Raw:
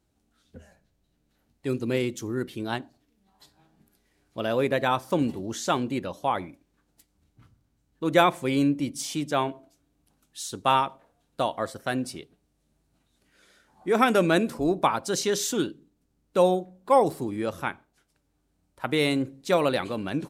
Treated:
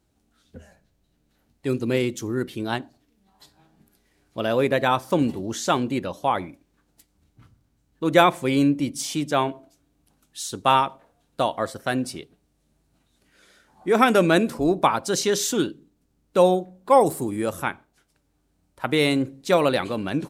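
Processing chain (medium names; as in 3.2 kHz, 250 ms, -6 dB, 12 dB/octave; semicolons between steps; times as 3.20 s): 17.00–17.63 s: resonant high shelf 6.4 kHz +7.5 dB, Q 1.5; trim +3.5 dB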